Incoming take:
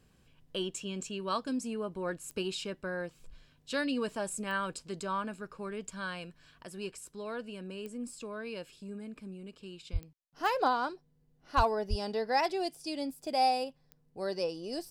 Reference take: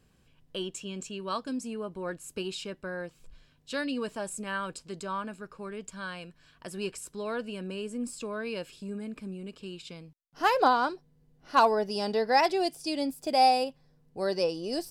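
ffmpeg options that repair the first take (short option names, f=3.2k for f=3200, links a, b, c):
-filter_complex "[0:a]adeclick=t=4,asplit=3[a][b][c];[a]afade=t=out:st=9.92:d=0.02[d];[b]highpass=f=140:w=0.5412,highpass=f=140:w=1.3066,afade=t=in:st=9.92:d=0.02,afade=t=out:st=10.04:d=0.02[e];[c]afade=t=in:st=10.04:d=0.02[f];[d][e][f]amix=inputs=3:normalize=0,asplit=3[g][h][i];[g]afade=t=out:st=11.56:d=0.02[j];[h]highpass=f=140:w=0.5412,highpass=f=140:w=1.3066,afade=t=in:st=11.56:d=0.02,afade=t=out:st=11.68:d=0.02[k];[i]afade=t=in:st=11.68:d=0.02[l];[j][k][l]amix=inputs=3:normalize=0,asplit=3[m][n][o];[m]afade=t=out:st=11.89:d=0.02[p];[n]highpass=f=140:w=0.5412,highpass=f=140:w=1.3066,afade=t=in:st=11.89:d=0.02,afade=t=out:st=12.01:d=0.02[q];[o]afade=t=in:st=12.01:d=0.02[r];[p][q][r]amix=inputs=3:normalize=0,asetnsamples=n=441:p=0,asendcmd='6.63 volume volume 5.5dB',volume=0dB"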